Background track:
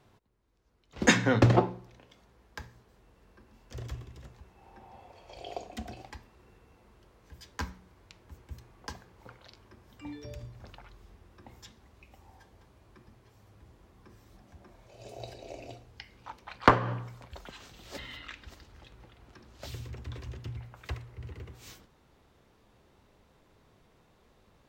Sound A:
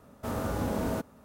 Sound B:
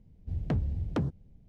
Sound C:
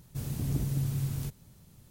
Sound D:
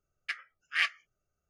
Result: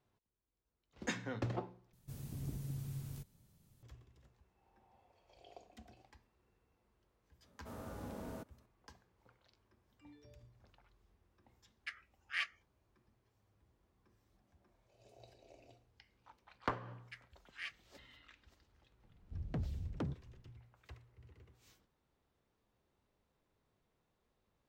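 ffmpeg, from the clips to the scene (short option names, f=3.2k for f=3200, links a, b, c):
-filter_complex "[4:a]asplit=2[a][b];[0:a]volume=-17.5dB[c];[b]equalizer=f=1.1k:w=1.5:g=-4.5[d];[c]asplit=2[e][f];[e]atrim=end=1.934[g];[3:a]atrim=end=1.9,asetpts=PTS-STARTPTS,volume=-12.5dB[h];[f]atrim=start=3.826[i];[1:a]atrim=end=1.24,asetpts=PTS-STARTPTS,volume=-16dB,afade=t=in:d=0.004:c=hsin,afade=t=out:st=1.236:d=0.004:c=hsin,adelay=7420[j];[a]atrim=end=1.49,asetpts=PTS-STARTPTS,volume=-10dB,afade=t=in:d=0.004:c=hsin,afade=t=out:st=1.486:d=0.004:c=hsin,adelay=11580[k];[d]atrim=end=1.49,asetpts=PTS-STARTPTS,volume=-17dB,afade=t=in:d=0.004:c=hsin,afade=t=out:st=1.486:d=0.004:c=hsin,adelay=16830[l];[2:a]atrim=end=1.48,asetpts=PTS-STARTPTS,volume=-10dB,afade=t=in:d=0.004:c=hsin,afade=t=out:st=1.476:d=0.004:c=hsin,adelay=19040[m];[g][h]acrossfade=d=0.004:c1=hsin:c2=hsin[n];[n][i]acrossfade=d=0.004:c1=hsin:c2=hsin[o];[o][j][k][l][m]amix=inputs=5:normalize=0"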